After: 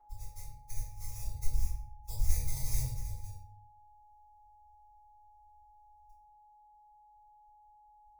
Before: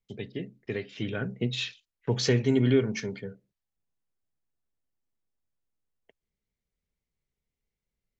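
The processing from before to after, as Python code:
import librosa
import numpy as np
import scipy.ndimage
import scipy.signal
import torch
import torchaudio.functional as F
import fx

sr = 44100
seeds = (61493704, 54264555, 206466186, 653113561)

y = fx.spec_clip(x, sr, under_db=22)
y = fx.sample_hold(y, sr, seeds[0], rate_hz=4200.0, jitter_pct=0)
y = scipy.signal.sosfilt(scipy.signal.cheby2(4, 40, [150.0, 3200.0], 'bandstop', fs=sr, output='sos'), y)
y = fx.high_shelf_res(y, sr, hz=4100.0, db=-13.0, q=1.5)
y = y + 10.0 ** (-67.0 / 20.0) * np.sin(2.0 * np.pi * 840.0 * np.arange(len(y)) / sr)
y = fx.peak_eq(y, sr, hz=350.0, db=3.0, octaves=0.38)
y = fx.room_shoebox(y, sr, seeds[1], volume_m3=76.0, walls='mixed', distance_m=4.0)
y = F.gain(torch.from_numpy(y), -4.0).numpy()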